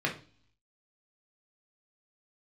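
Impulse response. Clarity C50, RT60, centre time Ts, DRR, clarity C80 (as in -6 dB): 10.5 dB, 0.40 s, 17 ms, -1.5 dB, 17.0 dB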